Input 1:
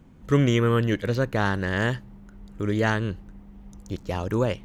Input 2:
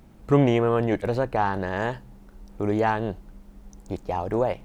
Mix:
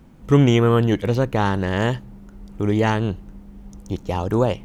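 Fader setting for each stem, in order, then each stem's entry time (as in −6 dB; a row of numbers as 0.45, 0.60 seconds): +2.0, −2.0 decibels; 0.00, 0.00 seconds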